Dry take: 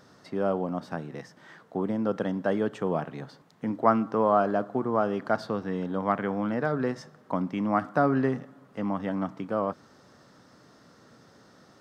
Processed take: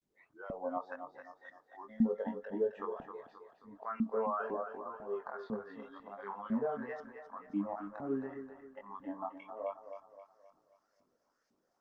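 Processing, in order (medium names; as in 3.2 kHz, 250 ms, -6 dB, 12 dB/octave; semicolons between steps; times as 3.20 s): tape start-up on the opening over 0.43 s; spectral noise reduction 24 dB; peaking EQ 4.5 kHz -4.5 dB 0.62 oct; slow attack 293 ms; in parallel at +3 dB: compression 12:1, threshold -41 dBFS, peak gain reduction 23.5 dB; on the sum: peak limiter -21.5 dBFS, peak gain reduction 11.5 dB; chorus 0.81 Hz, delay 20 ms, depth 2.7 ms; LFO band-pass saw up 2 Hz 230–2500 Hz; distance through air 69 m; on a send: thinning echo 265 ms, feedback 48%, high-pass 270 Hz, level -8 dB; on the sum: trim +4 dB; Opus 24 kbps 48 kHz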